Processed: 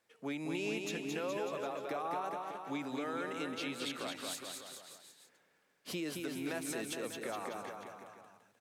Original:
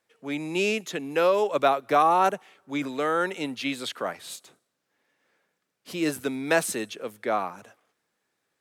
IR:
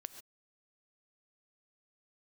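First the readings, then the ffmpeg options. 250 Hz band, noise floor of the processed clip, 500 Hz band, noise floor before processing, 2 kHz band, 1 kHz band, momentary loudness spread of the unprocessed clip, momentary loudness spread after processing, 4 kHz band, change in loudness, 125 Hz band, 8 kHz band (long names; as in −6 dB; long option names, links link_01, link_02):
−9.0 dB, −73 dBFS, −14.0 dB, −79 dBFS, −12.0 dB, −16.0 dB, 14 LU, 13 LU, −8.0 dB, −13.5 dB, −8.5 dB, −8.0 dB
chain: -af "acompressor=threshold=-35dB:ratio=2.5,alimiter=level_in=5dB:limit=-24dB:level=0:latency=1:release=304,volume=-5dB,aecho=1:1:220|418|596.2|756.6|900.9:0.631|0.398|0.251|0.158|0.1,volume=-1.5dB"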